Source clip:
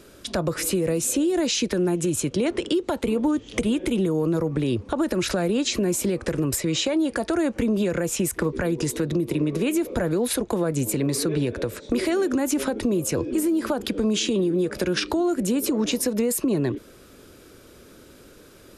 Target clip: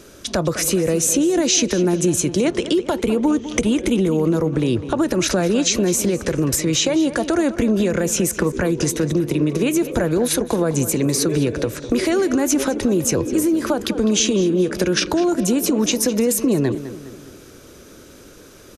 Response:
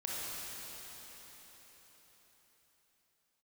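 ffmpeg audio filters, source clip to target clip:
-filter_complex "[0:a]equalizer=f=6100:t=o:w=0.22:g=9,asplit=2[s0][s1];[s1]adelay=205,lowpass=f=4200:p=1,volume=0.224,asplit=2[s2][s3];[s3]adelay=205,lowpass=f=4200:p=1,volume=0.49,asplit=2[s4][s5];[s5]adelay=205,lowpass=f=4200:p=1,volume=0.49,asplit=2[s6][s7];[s7]adelay=205,lowpass=f=4200:p=1,volume=0.49,asplit=2[s8][s9];[s9]adelay=205,lowpass=f=4200:p=1,volume=0.49[s10];[s2][s4][s6][s8][s10]amix=inputs=5:normalize=0[s11];[s0][s11]amix=inputs=2:normalize=0,volume=1.68"

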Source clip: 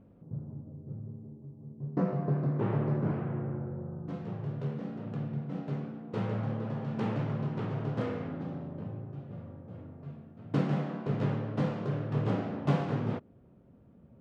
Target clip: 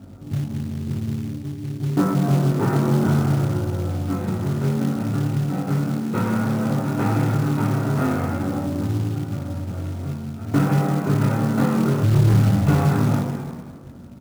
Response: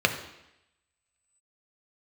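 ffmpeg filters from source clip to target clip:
-filter_complex "[0:a]asettb=1/sr,asplit=3[s0][s1][s2];[s0]atrim=end=10.504[s3];[s1]atrim=start=10.5:end=11.36,asetpts=PTS-STARTPTS,afade=t=in:d=0.004:c=qsin,afade=t=out:st=0.856:d=0.004:c=qsin,lowpass=f=3500:w=0.5412,lowpass=f=3500:w=1.3066[s4];[s2]atrim=start=11.356[s5];[s3][s4]acrossfade=d=0.004:c1=hsin:c2=qsin[s6];[s6][s5]acrossfade=d=0.004:c1=qsin:c2=hsin,asplit=3[s7][s8][s9];[s7]afade=t=out:st=12.02:d=0.02[s10];[s8]asubboost=boost=9:cutoff=120,afade=t=in:st=12.02:d=0.02,afade=t=out:st=12.69:d=0.02[s11];[s9]afade=t=in:st=12.69:d=0.02[s12];[s10][s11][s12]amix=inputs=3:normalize=0,asplit=2[s13][s14];[s14]adelay=233.2,volume=0.126,highshelf=f=4000:g=-5.25[s15];[s13][s15]amix=inputs=2:normalize=0[s16];[1:a]atrim=start_sample=2205,asetrate=23814,aresample=44100[s17];[s16][s17]afir=irnorm=-1:irlink=0,asoftclip=type=tanh:threshold=0.794,flanger=delay=20:depth=2.2:speed=0.55,acrusher=bits=5:mode=log:mix=0:aa=0.000001,acompressor=threshold=0.0794:ratio=1.5"

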